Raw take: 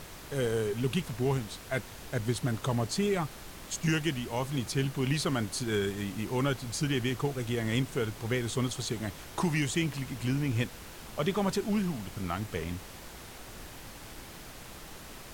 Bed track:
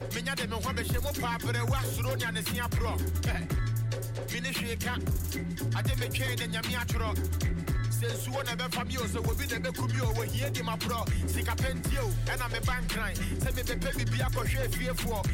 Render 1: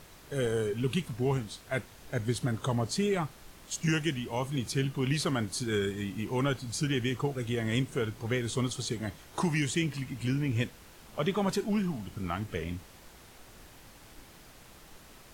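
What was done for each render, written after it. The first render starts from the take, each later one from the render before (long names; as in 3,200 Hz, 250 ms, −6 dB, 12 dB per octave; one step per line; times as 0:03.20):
noise reduction from a noise print 7 dB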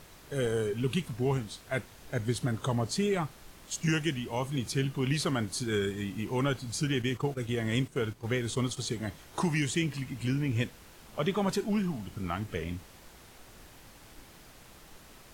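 0:07.02–0:08.77: noise gate −39 dBFS, range −9 dB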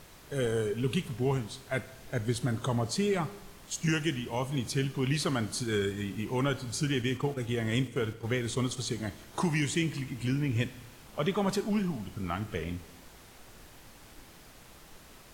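four-comb reverb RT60 1.2 s, combs from 27 ms, DRR 15 dB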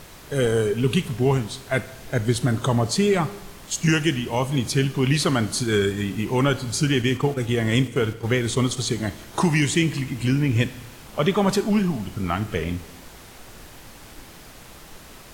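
level +9 dB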